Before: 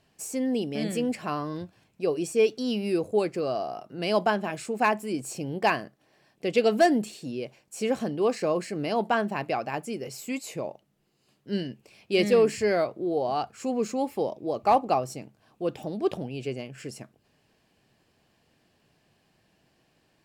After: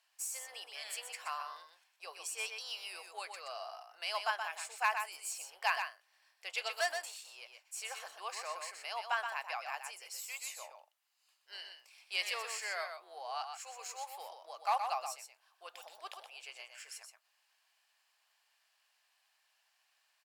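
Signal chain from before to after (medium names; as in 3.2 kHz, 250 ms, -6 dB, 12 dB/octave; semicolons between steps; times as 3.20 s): octave divider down 2 oct, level +4 dB; inverse Chebyshev high-pass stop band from 260 Hz, stop band 60 dB; treble shelf 5.5 kHz +5 dB; delay 124 ms -6.5 dB; trim -6 dB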